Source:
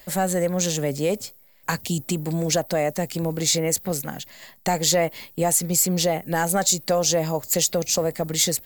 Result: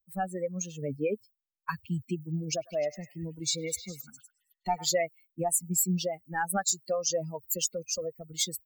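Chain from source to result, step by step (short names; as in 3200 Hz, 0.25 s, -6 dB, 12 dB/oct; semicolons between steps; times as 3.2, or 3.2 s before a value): per-bin expansion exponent 3; 2.31–4.88 delay with a stepping band-pass 0.102 s, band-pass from 1400 Hz, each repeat 0.7 oct, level -8.5 dB; gain -2 dB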